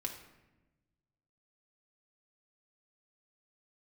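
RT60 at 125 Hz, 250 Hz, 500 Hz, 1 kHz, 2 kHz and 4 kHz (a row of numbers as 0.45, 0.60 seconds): 1.9, 1.6, 1.2, 0.95, 0.95, 0.65 seconds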